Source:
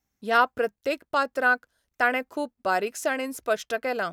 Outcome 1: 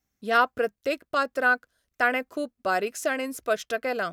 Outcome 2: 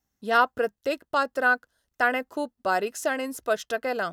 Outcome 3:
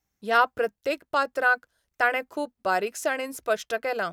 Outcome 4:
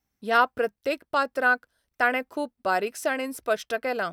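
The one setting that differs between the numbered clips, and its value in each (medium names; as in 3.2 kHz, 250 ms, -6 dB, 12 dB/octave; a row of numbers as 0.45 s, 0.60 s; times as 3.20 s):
band-stop, frequency: 880 Hz, 2.3 kHz, 250 Hz, 6.8 kHz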